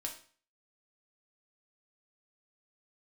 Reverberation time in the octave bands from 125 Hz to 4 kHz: 0.50, 0.45, 0.45, 0.45, 0.45, 0.40 s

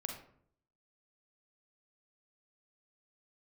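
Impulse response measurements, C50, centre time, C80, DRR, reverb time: 5.0 dB, 28 ms, 9.0 dB, 2.5 dB, 0.60 s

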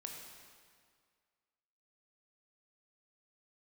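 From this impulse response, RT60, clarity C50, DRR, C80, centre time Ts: 2.0 s, 2.5 dB, 0.5 dB, 3.5 dB, 73 ms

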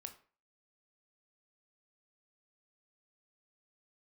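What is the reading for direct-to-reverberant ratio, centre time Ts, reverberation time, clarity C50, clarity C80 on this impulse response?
6.0 dB, 9 ms, 0.40 s, 12.5 dB, 17.0 dB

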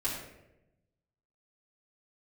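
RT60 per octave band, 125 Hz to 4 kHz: 1.5, 1.2, 1.1, 0.75, 0.80, 0.55 s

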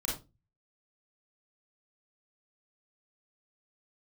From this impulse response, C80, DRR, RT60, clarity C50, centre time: 11.5 dB, -4.5 dB, 0.25 s, 3.5 dB, 37 ms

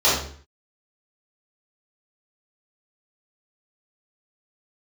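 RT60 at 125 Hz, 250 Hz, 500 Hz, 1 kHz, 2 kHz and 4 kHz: 0.60, 0.55, 0.50, 0.50, 0.50, 0.45 s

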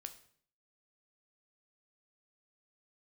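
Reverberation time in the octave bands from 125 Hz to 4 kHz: 0.70, 0.70, 0.60, 0.55, 0.55, 0.50 s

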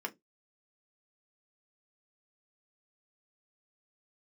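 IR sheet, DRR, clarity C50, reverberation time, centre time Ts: 3.5 dB, 24.5 dB, 0.15 s, 6 ms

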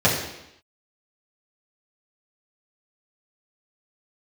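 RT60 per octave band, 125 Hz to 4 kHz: 0.75, 0.85, 0.80, 0.85, 0.85, 0.85 s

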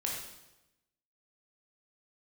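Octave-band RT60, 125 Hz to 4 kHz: 1.2, 1.1, 1.0, 0.95, 0.90, 0.85 s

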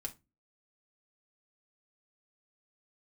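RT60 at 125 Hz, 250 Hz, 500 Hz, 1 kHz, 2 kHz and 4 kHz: 0.40, 0.40, 0.25, 0.20, 0.20, 0.20 s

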